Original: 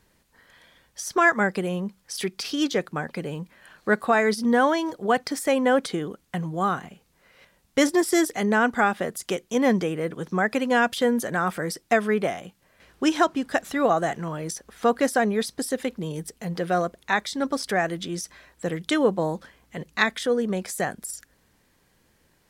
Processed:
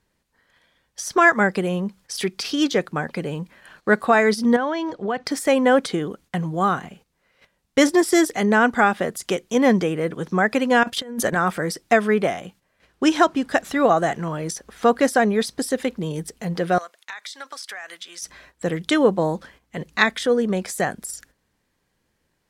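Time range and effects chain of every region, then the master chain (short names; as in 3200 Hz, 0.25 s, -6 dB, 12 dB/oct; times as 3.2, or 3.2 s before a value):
4.56–5.26 LPF 4500 Hz + compressor 3:1, threshold -26 dBFS
10.83–11.36 gate -32 dBFS, range -10 dB + negative-ratio compressor -28 dBFS, ratio -0.5
16.78–18.22 HPF 1300 Hz + compressor 12:1, threshold -34 dBFS
whole clip: gate -52 dBFS, range -11 dB; high shelf 12000 Hz -7 dB; gain +4 dB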